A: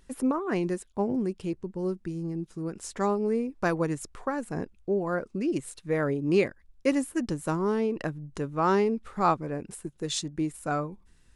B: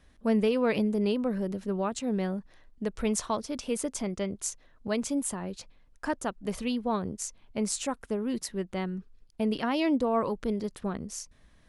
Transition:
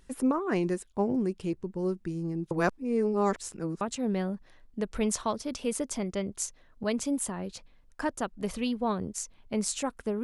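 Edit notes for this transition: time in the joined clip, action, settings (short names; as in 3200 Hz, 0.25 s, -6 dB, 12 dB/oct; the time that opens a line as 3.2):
A
2.51–3.81 reverse
3.81 switch to B from 1.85 s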